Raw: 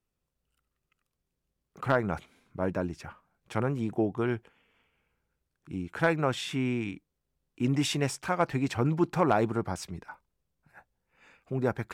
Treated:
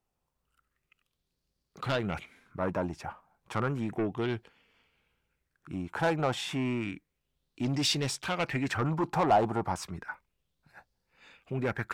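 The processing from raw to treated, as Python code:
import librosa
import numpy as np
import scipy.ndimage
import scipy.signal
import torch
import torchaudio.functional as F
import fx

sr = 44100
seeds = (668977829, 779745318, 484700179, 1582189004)

y = 10.0 ** (-24.5 / 20.0) * np.tanh(x / 10.0 ** (-24.5 / 20.0))
y = fx.bell_lfo(y, sr, hz=0.32, low_hz=780.0, high_hz=4700.0, db=11)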